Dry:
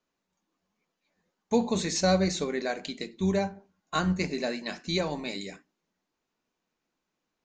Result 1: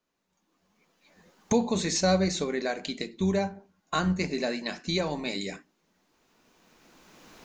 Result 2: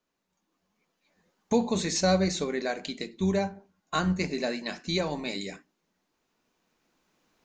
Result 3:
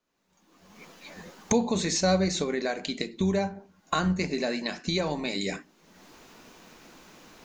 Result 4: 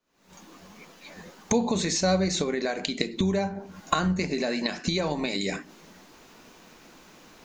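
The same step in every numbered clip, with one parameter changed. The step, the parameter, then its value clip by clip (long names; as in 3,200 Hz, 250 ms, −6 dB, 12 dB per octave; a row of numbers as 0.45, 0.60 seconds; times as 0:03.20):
camcorder AGC, rising by: 14, 5.2, 37, 90 dB per second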